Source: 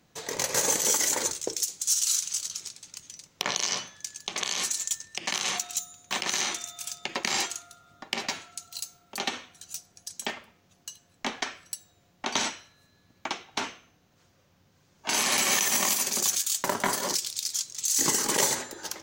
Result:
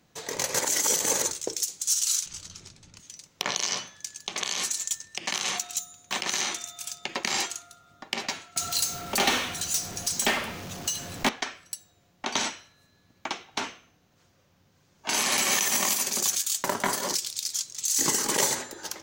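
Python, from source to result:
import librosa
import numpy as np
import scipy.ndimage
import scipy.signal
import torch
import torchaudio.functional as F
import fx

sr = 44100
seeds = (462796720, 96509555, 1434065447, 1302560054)

y = fx.riaa(x, sr, side='playback', at=(2.26, 3.0))
y = fx.power_curve(y, sr, exponent=0.5, at=(8.56, 11.29))
y = fx.edit(y, sr, fx.reverse_span(start_s=0.59, length_s=0.63), tone=tone)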